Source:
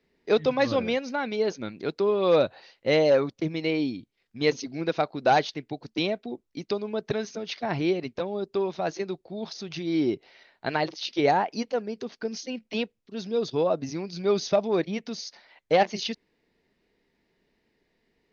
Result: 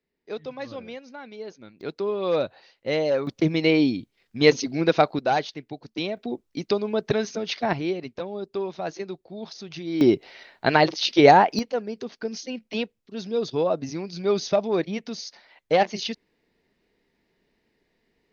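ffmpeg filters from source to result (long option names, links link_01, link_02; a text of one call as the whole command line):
ffmpeg -i in.wav -af "asetnsamples=nb_out_samples=441:pad=0,asendcmd='1.81 volume volume -3dB;3.27 volume volume 7dB;5.19 volume volume -2dB;6.17 volume volume 5dB;7.73 volume volume -2dB;10.01 volume volume 8.5dB;11.59 volume volume 1dB',volume=-11.5dB" out.wav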